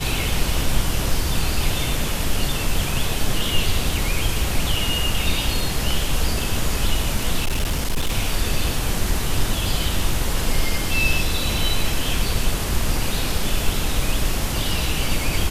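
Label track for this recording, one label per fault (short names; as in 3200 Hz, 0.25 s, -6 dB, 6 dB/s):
7.400000	8.130000	clipped -16.5 dBFS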